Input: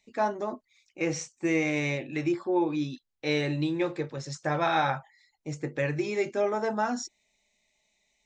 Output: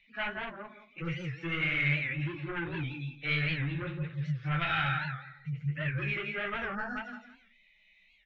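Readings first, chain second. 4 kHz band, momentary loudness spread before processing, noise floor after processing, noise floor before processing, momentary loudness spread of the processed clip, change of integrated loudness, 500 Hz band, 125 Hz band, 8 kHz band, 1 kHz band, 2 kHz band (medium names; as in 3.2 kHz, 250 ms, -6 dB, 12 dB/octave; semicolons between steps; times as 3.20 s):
-0.5 dB, 10 LU, -65 dBFS, -75 dBFS, 12 LU, -3.5 dB, -14.0 dB, +2.5 dB, under -25 dB, -8.0 dB, +2.5 dB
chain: harmonic-percussive separation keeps harmonic; hum notches 60/120/180/240 Hz; on a send: feedback delay 170 ms, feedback 19%, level -6.5 dB; on the sum: saturation -24.5 dBFS, distortion -13 dB; FFT filter 150 Hz 0 dB, 290 Hz -14 dB, 680 Hz -10 dB, 980 Hz -9 dB, 1.4 kHz +9 dB, 3.1 kHz +11 dB, 4.4 kHz -6 dB, 8.1 kHz -27 dB; in parallel at +1.5 dB: compression, threshold -44 dBFS, peak gain reduction 18.5 dB; on the sum: flange 1.7 Hz, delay 9.2 ms, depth 8.8 ms, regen -27%; time-frequency box 6.75–6.97 s, 1.9–4.2 kHz -22 dB; bass shelf 190 Hz +9 dB; warped record 78 rpm, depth 160 cents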